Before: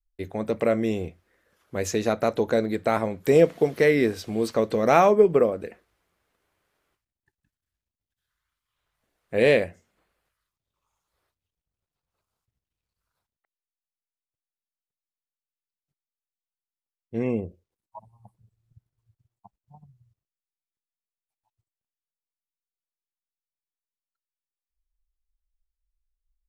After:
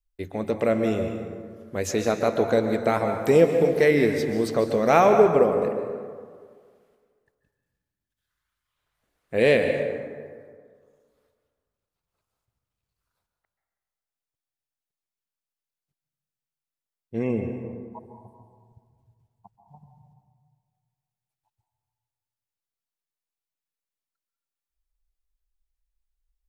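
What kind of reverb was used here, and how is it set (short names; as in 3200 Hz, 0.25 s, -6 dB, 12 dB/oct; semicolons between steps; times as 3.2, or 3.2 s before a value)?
plate-style reverb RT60 1.9 s, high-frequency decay 0.45×, pre-delay 0.12 s, DRR 5.5 dB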